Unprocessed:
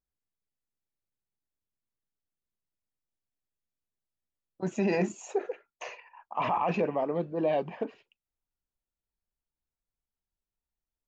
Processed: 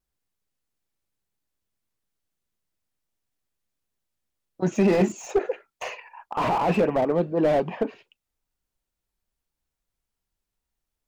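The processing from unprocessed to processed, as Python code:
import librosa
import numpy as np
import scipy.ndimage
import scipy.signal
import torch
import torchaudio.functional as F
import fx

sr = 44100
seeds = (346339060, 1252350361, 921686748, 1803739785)

y = fx.wow_flutter(x, sr, seeds[0], rate_hz=2.1, depth_cents=42.0)
y = fx.slew_limit(y, sr, full_power_hz=31.0)
y = y * librosa.db_to_amplitude(8.0)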